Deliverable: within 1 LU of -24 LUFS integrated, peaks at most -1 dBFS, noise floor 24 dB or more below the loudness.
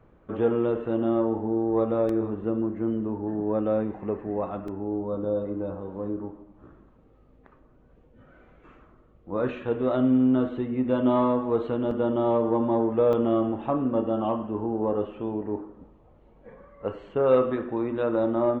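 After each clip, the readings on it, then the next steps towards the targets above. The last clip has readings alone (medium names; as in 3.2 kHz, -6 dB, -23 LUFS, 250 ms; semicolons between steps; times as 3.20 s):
dropouts 4; longest dropout 3.0 ms; loudness -26.0 LUFS; peak level -10.0 dBFS; loudness target -24.0 LUFS
-> interpolate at 2.09/4.68/11.91/13.13 s, 3 ms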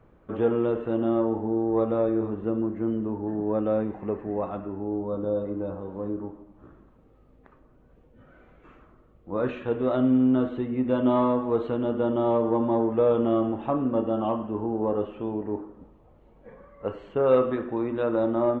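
dropouts 0; loudness -26.0 LUFS; peak level -10.0 dBFS; loudness target -24.0 LUFS
-> trim +2 dB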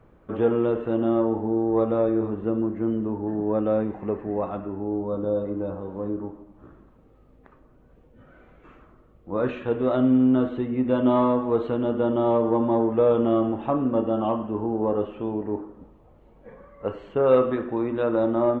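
loudness -24.0 LUFS; peak level -8.0 dBFS; noise floor -55 dBFS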